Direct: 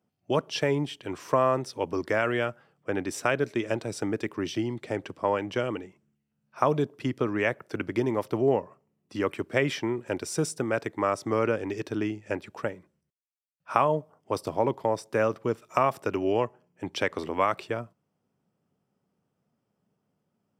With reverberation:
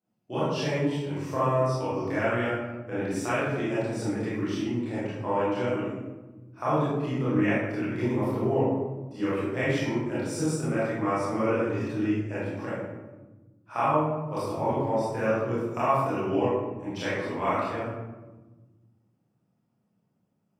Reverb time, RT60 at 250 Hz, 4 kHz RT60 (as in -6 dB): 1.2 s, 2.0 s, 0.60 s